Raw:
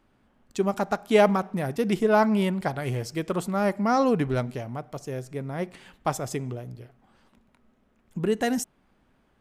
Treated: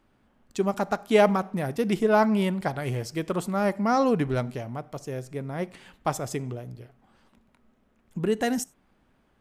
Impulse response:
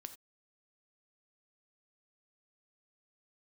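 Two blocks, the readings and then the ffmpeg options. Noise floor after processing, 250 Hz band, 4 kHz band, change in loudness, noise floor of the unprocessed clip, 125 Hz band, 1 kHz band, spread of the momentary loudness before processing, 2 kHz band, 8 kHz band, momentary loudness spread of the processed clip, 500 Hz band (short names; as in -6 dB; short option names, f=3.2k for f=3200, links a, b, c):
-66 dBFS, -0.5 dB, -0.5 dB, -0.5 dB, -66 dBFS, -0.5 dB, -0.5 dB, 15 LU, -0.5 dB, -0.5 dB, 15 LU, -0.5 dB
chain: -filter_complex "[0:a]asplit=2[a][b];[1:a]atrim=start_sample=2205[c];[b][c]afir=irnorm=-1:irlink=0,volume=-8dB[d];[a][d]amix=inputs=2:normalize=0,volume=-2dB"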